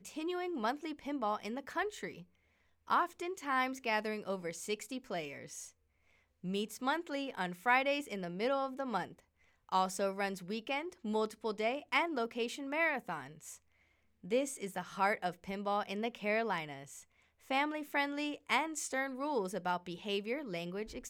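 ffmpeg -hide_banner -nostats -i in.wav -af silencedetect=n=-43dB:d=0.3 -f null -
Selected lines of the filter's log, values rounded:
silence_start: 2.20
silence_end: 2.88 | silence_duration: 0.68
silence_start: 5.66
silence_end: 6.44 | silence_duration: 0.78
silence_start: 9.11
silence_end: 9.69 | silence_duration: 0.58
silence_start: 13.55
silence_end: 14.24 | silence_duration: 0.69
silence_start: 16.99
silence_end: 17.50 | silence_duration: 0.52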